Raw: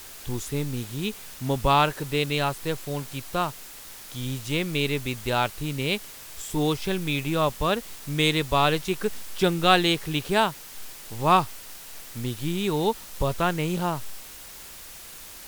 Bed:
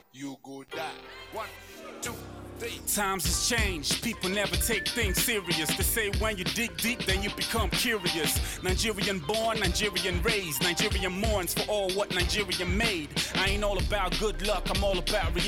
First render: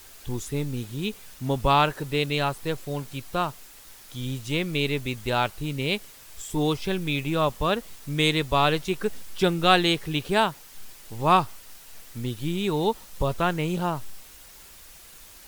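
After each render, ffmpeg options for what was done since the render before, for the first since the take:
-af "afftdn=nr=6:nf=-43"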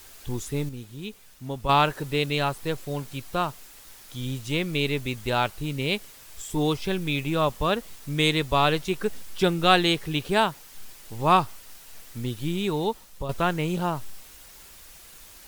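-filter_complex "[0:a]asplit=4[a][b][c][d];[a]atrim=end=0.692[e];[b]atrim=start=0.688:end=1.692,asetpts=PTS-STARTPTS,volume=-7dB[f];[c]atrim=start=1.688:end=13.29,asetpts=PTS-STARTPTS,afade=t=out:st=10.902:d=0.7:silence=0.375837[g];[d]atrim=start=13.29,asetpts=PTS-STARTPTS,afade=t=in:d=0.004:c=hsin:silence=0.375837[h];[e][f]acrossfade=d=0.004:c1=hsin:c2=hsin[i];[g][h]concat=n=2:v=0:a=1[j];[i][j]acrossfade=d=0.004:c1=hsin:c2=hsin"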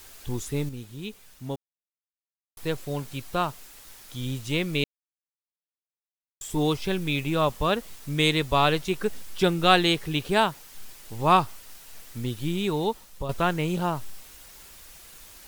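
-filter_complex "[0:a]asplit=5[a][b][c][d][e];[a]atrim=end=1.56,asetpts=PTS-STARTPTS,afade=t=out:st=1.556:d=0.004:c=hsin[f];[b]atrim=start=1.56:end=2.57,asetpts=PTS-STARTPTS,volume=0[g];[c]atrim=start=2.57:end=4.84,asetpts=PTS-STARTPTS,afade=t=in:d=0.004:c=hsin,afade=t=out:st=2.266:d=0.004:c=hsin[h];[d]atrim=start=4.84:end=6.41,asetpts=PTS-STARTPTS,volume=0[i];[e]atrim=start=6.41,asetpts=PTS-STARTPTS,afade=t=in:d=0.004:c=hsin[j];[f][g][h][i][j]concat=n=5:v=0:a=1"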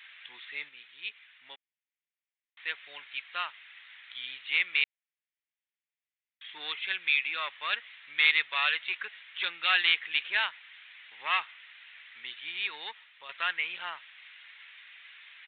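-af "aresample=8000,asoftclip=type=tanh:threshold=-16.5dB,aresample=44100,highpass=f=2k:t=q:w=2.9"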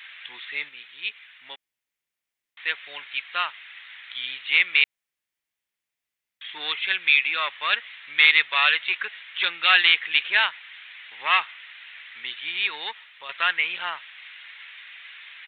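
-af "volume=8dB,alimiter=limit=-3dB:level=0:latency=1"

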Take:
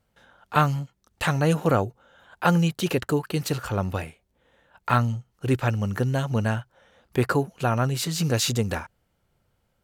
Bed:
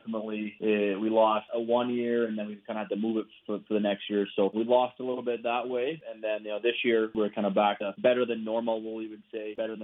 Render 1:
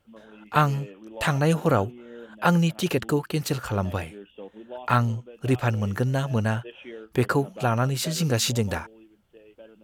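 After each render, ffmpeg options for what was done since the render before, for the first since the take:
-filter_complex "[1:a]volume=-15.5dB[a];[0:a][a]amix=inputs=2:normalize=0"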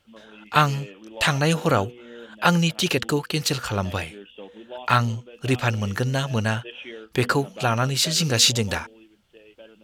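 -af "equalizer=f=4.2k:t=o:w=2.4:g=10,bandreject=f=242.4:t=h:w=4,bandreject=f=484.8:t=h:w=4"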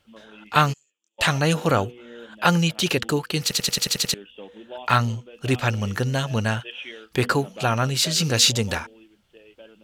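-filter_complex "[0:a]asplit=3[a][b][c];[a]afade=t=out:st=0.72:d=0.02[d];[b]bandpass=f=7.2k:t=q:w=13,afade=t=in:st=0.72:d=0.02,afade=t=out:st=1.18:d=0.02[e];[c]afade=t=in:st=1.18:d=0.02[f];[d][e][f]amix=inputs=3:normalize=0,asettb=1/sr,asplit=3[g][h][i];[g]atrim=end=6.604[j];[h]atrim=start=6.6:end=7.13,asetpts=PTS-STARTPTS,afade=t=in:d=0.004:c=qsin,afade=t=out:st=0.526:d=0.004:c=qsin,tiltshelf=f=1.2k:g=-5[k];[i]atrim=start=7.126[l];[j][k]acrossfade=d=0.004:c1=hsin:c2=qsin[m];[m][l]acrossfade=d=0.004:c1=qsin:c2=hsin,asplit=9[n][o][p][q][r][s][t][u][v];[n]atrim=end=3.512[w];[o]atrim=start=3.418:end=3.512[x];[p]atrim=start=3.418:end=3.512[y];[q]atrim=start=3.418:end=3.512[z];[r]atrim=start=3.418:end=3.512[aa];[s]atrim=start=3.418:end=3.512[ab];[t]atrim=start=3.418:end=3.512[ac];[u]atrim=start=3.418:end=3.512[ad];[v]atrim=start=4.138[ae];[w][x]acrossfade=d=0.004:c1=hsin:c2=hsin[af];[af][y]acrossfade=d=0.004:c1=hsin:c2=hsin[ag];[ag][z]acrossfade=d=0.004:c1=hsin:c2=hsin[ah];[ah][aa]acrossfade=d=0.004:c1=hsin:c2=hsin[ai];[ai][ab]acrossfade=d=0.004:c1=hsin:c2=hsin[aj];[aj][ac]acrossfade=d=0.004:c1=hsin:c2=hsin[ak];[ak][ad]acrossfade=d=0.004:c1=hsin:c2=hsin[al];[al][ae]acrossfade=d=0.004:c1=hsin:c2=hsin"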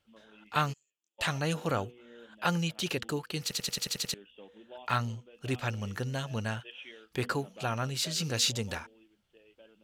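-af "volume=-10.5dB"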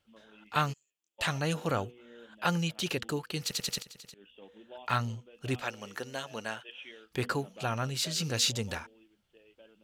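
-filter_complex "[0:a]asettb=1/sr,asplit=3[a][b][c];[a]atrim=end=3.824[d];[b]atrim=start=3.82:end=4.42,asetpts=PTS-STARTPTS,afade=t=in:d=0.004:c=qsin,afade=t=out:st=0.596:d=0.004:c=qsin,acompressor=threshold=-47dB:ratio=8:attack=3.2:release=140:knee=1:detection=peak[e];[c]atrim=start=4.416[f];[d][e]acrossfade=d=0.004:c1=hsin:c2=qsin[g];[g][f]acrossfade=d=0.004:c1=qsin:c2=hsin,asettb=1/sr,asplit=3[h][i][j];[h]atrim=end=5.624[k];[i]atrim=start=5.62:end=6.69,asetpts=PTS-STARTPTS,afade=t=in:d=0.004:c=qsin,afade=t=out:st=1.066:d=0.004:c=qsin,highpass=330[l];[j]atrim=start=6.686[m];[k][l]acrossfade=d=0.004:c1=hsin:c2=qsin[n];[n][m]acrossfade=d=0.004:c1=qsin:c2=hsin"

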